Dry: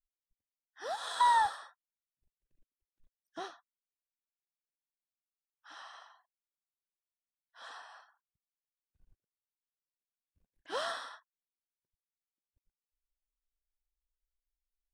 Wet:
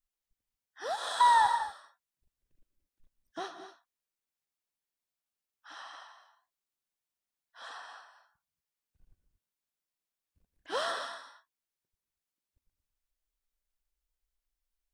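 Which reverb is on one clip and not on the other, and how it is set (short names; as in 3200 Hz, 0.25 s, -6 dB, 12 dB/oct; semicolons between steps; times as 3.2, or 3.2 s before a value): non-linear reverb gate 0.26 s rising, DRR 9 dB; gain +3 dB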